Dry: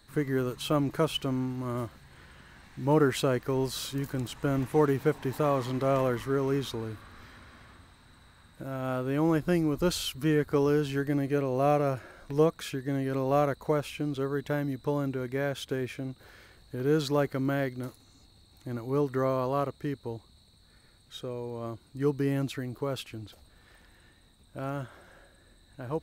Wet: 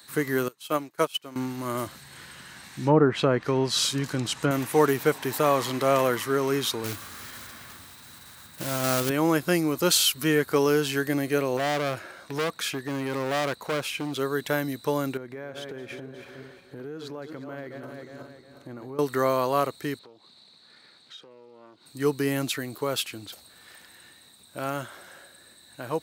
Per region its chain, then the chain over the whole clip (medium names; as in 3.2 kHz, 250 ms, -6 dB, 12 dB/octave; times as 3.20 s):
0.48–1.36 s: bass shelf 140 Hz -11.5 dB + upward expansion 2.5:1, over -42 dBFS
1.86–4.51 s: low-pass that closes with the level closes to 1.1 kHz, closed at -20.5 dBFS + tone controls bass +6 dB, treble +3 dB
6.84–9.11 s: block-companded coder 3-bit + bass shelf 150 Hz +11 dB
11.57–14.13 s: treble shelf 6.1 kHz -7.5 dB + overload inside the chain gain 28.5 dB
15.17–18.99 s: backward echo that repeats 180 ms, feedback 60%, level -10 dB + low-pass 1.1 kHz 6 dB/octave + compression 10:1, threshold -37 dBFS
19.99–21.86 s: three-band isolator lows -16 dB, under 150 Hz, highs -21 dB, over 5.5 kHz + compression 4:1, threshold -54 dBFS + loudspeaker Doppler distortion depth 0.31 ms
whole clip: high-pass 110 Hz; tilt EQ +2.5 dB/octave; trim +6.5 dB